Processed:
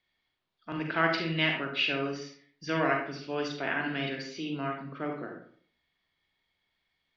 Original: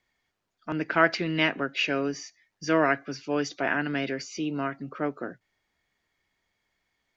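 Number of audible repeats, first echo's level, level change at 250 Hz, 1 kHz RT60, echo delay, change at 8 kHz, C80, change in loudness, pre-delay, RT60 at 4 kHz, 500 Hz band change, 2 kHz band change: no echo audible, no echo audible, −5.0 dB, 0.55 s, no echo audible, can't be measured, 8.5 dB, −3.5 dB, 36 ms, 0.35 s, −4.5 dB, −3.0 dB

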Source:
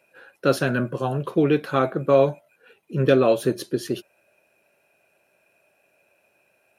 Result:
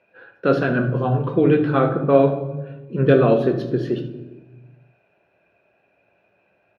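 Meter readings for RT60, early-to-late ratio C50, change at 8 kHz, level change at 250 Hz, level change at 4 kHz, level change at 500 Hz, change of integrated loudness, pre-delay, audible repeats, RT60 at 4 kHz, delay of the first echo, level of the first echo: 1.2 s, 9.0 dB, below −15 dB, +4.5 dB, −4.5 dB, +2.5 dB, +3.0 dB, 3 ms, 1, 0.75 s, 73 ms, −14.0 dB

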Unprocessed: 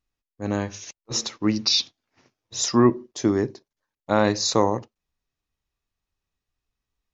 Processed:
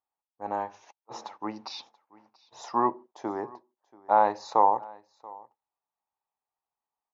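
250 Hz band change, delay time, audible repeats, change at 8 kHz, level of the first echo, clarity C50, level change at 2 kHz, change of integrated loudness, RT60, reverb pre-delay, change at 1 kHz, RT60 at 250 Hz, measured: −14.5 dB, 683 ms, 1, can't be measured, −23.0 dB, no reverb audible, −9.5 dB, −5.0 dB, no reverb audible, no reverb audible, +4.5 dB, no reverb audible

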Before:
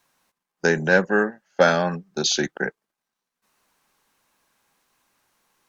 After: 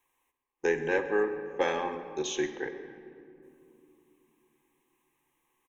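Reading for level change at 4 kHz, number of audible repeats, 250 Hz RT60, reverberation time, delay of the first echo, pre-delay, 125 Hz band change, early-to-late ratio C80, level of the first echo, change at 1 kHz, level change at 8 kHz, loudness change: −14.0 dB, 1, 4.5 s, 2.7 s, 135 ms, 6 ms, −18.0 dB, 10.0 dB, −20.0 dB, −8.5 dB, can't be measured, −9.0 dB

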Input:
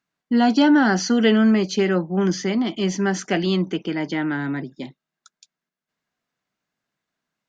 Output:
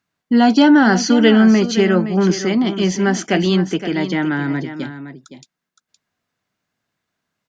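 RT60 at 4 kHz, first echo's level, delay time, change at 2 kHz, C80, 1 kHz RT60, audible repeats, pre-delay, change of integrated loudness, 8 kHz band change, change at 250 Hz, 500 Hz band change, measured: no reverb audible, −11.5 dB, 516 ms, +5.0 dB, no reverb audible, no reverb audible, 1, no reverb audible, +5.0 dB, can't be measured, +5.0 dB, +5.0 dB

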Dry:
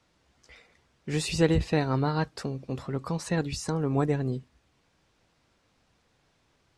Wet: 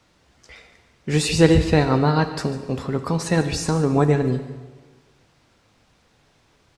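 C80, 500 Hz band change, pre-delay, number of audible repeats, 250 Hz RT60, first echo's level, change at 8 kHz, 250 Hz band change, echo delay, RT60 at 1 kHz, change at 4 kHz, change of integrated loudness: 11.0 dB, +9.0 dB, 5 ms, 1, 1.6 s, −16.5 dB, +8.5 dB, +8.5 dB, 146 ms, 1.4 s, +8.5 dB, +8.5 dB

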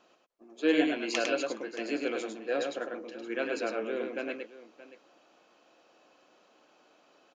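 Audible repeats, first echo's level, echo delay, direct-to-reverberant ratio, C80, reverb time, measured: 2, −4.0 dB, 103 ms, no reverb audible, no reverb audible, no reverb audible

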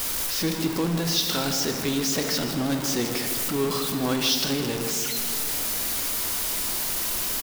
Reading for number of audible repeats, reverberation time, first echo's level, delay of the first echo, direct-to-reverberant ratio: 1, 2.5 s, −11.5 dB, 156 ms, 4.5 dB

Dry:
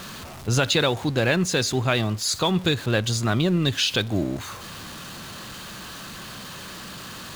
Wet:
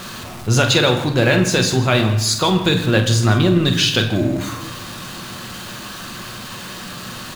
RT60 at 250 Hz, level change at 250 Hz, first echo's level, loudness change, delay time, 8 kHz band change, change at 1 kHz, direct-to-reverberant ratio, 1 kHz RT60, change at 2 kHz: 1.1 s, +7.0 dB, −9.5 dB, +6.5 dB, 46 ms, +5.5 dB, +6.5 dB, 3.5 dB, 0.85 s, +6.5 dB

